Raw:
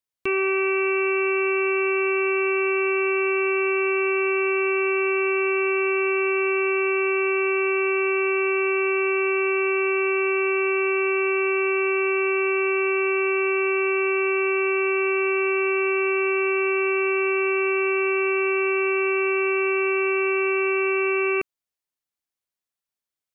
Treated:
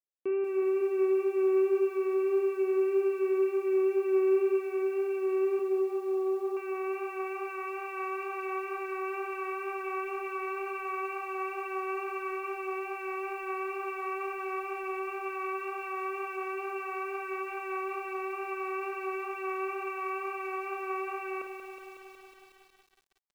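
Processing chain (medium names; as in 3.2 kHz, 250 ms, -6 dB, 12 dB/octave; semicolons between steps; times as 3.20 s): 5.59–6.57 s: elliptic band-pass 180–1100 Hz, stop band 40 dB; wow and flutter 26 cents; band-pass sweep 430 Hz -> 860 Hz, 5.23–7.69 s; on a send: early reflections 28 ms -11.5 dB, 50 ms -11.5 dB; on the sum: bit-crushed delay 184 ms, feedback 80%, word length 9-bit, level -8 dB; trim -3.5 dB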